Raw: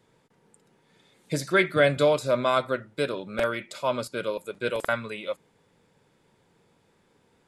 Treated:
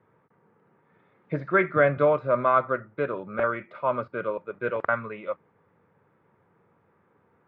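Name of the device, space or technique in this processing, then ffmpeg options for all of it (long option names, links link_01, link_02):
bass cabinet: -af "highpass=89,equalizer=frequency=92:width_type=q:width=4:gain=5,equalizer=frequency=260:width_type=q:width=4:gain=-3,equalizer=frequency=1200:width_type=q:width=4:gain=7,lowpass=frequency=2000:width=0.5412,lowpass=frequency=2000:width=1.3066"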